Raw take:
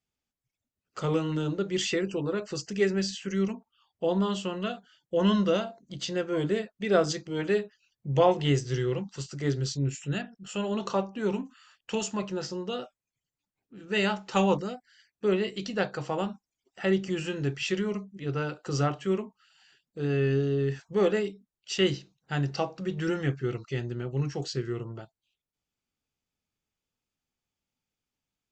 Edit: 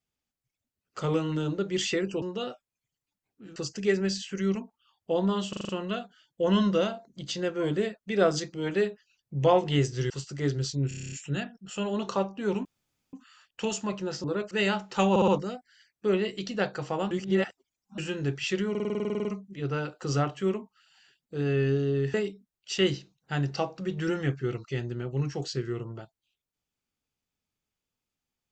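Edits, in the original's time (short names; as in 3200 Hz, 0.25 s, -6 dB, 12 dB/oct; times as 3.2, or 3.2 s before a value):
2.22–2.49 swap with 12.54–13.88
4.42 stutter 0.04 s, 6 plays
8.83–9.12 cut
9.9 stutter 0.03 s, 9 plays
11.43 insert room tone 0.48 s
14.47 stutter 0.06 s, 4 plays
16.3–17.17 reverse
17.89 stutter 0.05 s, 12 plays
20.78–21.14 cut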